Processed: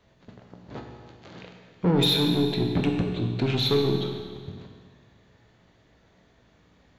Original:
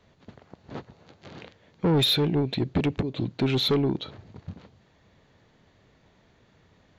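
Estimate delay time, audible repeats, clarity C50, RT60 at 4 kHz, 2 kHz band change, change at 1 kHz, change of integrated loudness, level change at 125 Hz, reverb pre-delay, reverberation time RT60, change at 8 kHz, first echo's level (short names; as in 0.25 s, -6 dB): none, none, 4.0 dB, 1.6 s, +0.5 dB, +0.5 dB, +0.5 dB, +1.0 dB, 17 ms, 1.7 s, +0.5 dB, none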